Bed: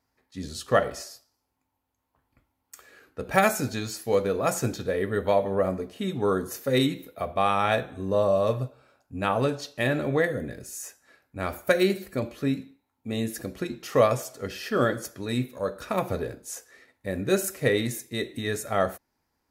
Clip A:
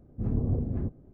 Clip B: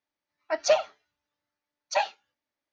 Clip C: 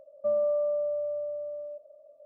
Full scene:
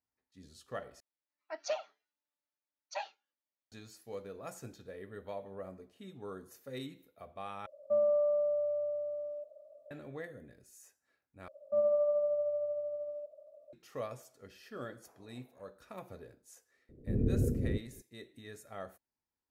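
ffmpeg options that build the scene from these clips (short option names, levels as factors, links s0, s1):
-filter_complex "[3:a]asplit=2[s0][s1];[1:a]asplit=2[s2][s3];[0:a]volume=0.1[s4];[2:a]highpass=f=200:w=0.5412,highpass=f=200:w=1.3066[s5];[s1]tremolo=f=13:d=0.32[s6];[s2]highpass=f=700:w=0.5412,highpass=f=700:w=1.3066[s7];[s3]lowshelf=f=660:t=q:w=3:g=12[s8];[s4]asplit=4[s9][s10][s11][s12];[s9]atrim=end=1.004[s13];[s5]atrim=end=2.72,asetpts=PTS-STARTPTS,volume=0.2[s14];[s10]atrim=start=3.716:end=7.664[s15];[s0]atrim=end=2.25,asetpts=PTS-STARTPTS,volume=0.794[s16];[s11]atrim=start=9.906:end=11.484[s17];[s6]atrim=end=2.25,asetpts=PTS-STARTPTS,volume=0.891[s18];[s12]atrim=start=13.726[s19];[s7]atrim=end=1.13,asetpts=PTS-STARTPTS,volume=0.282,afade=t=in:d=0.004:c=hsin,afade=t=out:st=1.126:d=0.004:c=hsin,adelay=14830[s20];[s8]atrim=end=1.13,asetpts=PTS-STARTPTS,volume=0.168,afade=t=in:d=0.004:c=hsin,afade=t=out:st=1.126:d=0.004:c=hsin,adelay=16890[s21];[s13][s14]acrossfade=d=0.004:c1=hsin:c2=hsin[s22];[s22][s15]acrossfade=d=0.004:c1=hsin:c2=hsin[s23];[s23][s16]acrossfade=d=0.004:c1=hsin:c2=hsin[s24];[s24][s17]acrossfade=d=0.004:c1=hsin:c2=hsin[s25];[s25][s18]acrossfade=d=0.004:c1=hsin:c2=hsin[s26];[s26][s19]acrossfade=d=0.004:c1=hsin:c2=hsin[s27];[s27][s20][s21]amix=inputs=3:normalize=0"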